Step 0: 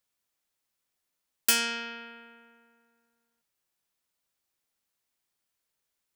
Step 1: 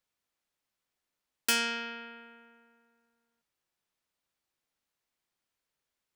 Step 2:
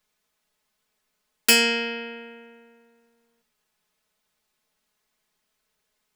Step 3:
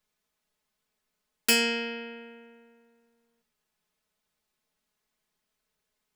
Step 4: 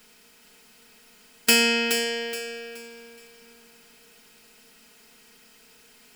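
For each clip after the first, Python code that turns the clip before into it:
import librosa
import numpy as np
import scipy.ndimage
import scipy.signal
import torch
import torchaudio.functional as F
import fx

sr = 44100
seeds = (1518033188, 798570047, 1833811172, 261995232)

y1 = fx.high_shelf(x, sr, hz=6200.0, db=-9.0)
y2 = y1 + 0.77 * np.pad(y1, (int(4.7 * sr / 1000.0), 0))[:len(y1)]
y2 = fx.room_shoebox(y2, sr, seeds[0], volume_m3=180.0, walls='furnished', distance_m=0.47)
y2 = y2 * 10.0 ** (8.0 / 20.0)
y3 = fx.low_shelf(y2, sr, hz=380.0, db=4.0)
y3 = y3 * 10.0 ** (-6.0 / 20.0)
y4 = fx.bin_compress(y3, sr, power=0.6)
y4 = fx.echo_feedback(y4, sr, ms=423, feedback_pct=32, wet_db=-7)
y4 = y4 * 10.0 ** (3.5 / 20.0)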